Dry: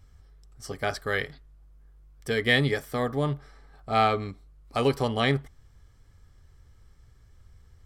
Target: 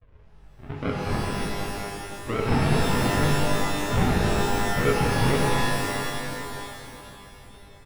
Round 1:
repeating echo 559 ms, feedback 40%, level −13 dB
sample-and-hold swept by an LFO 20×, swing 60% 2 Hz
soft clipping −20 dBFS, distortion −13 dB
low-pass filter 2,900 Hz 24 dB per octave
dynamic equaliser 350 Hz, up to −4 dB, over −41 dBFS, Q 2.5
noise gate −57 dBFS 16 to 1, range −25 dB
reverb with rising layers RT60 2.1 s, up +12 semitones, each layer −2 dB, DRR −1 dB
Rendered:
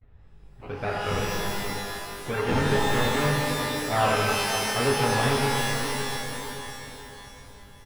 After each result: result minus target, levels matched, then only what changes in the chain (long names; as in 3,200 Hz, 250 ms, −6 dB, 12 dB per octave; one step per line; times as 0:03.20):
sample-and-hold swept by an LFO: distortion −13 dB; soft clipping: distortion +9 dB
change: sample-and-hold swept by an LFO 70×, swing 60% 2 Hz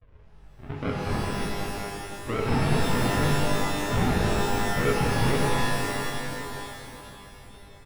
soft clipping: distortion +9 dB
change: soft clipping −13 dBFS, distortion −22 dB